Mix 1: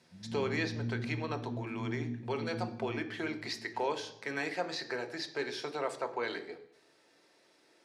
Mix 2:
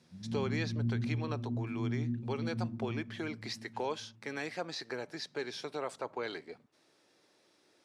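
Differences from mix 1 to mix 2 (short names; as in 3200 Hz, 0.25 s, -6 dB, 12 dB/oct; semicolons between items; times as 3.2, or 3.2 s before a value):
speech: send off; master: add low shelf 400 Hz +4.5 dB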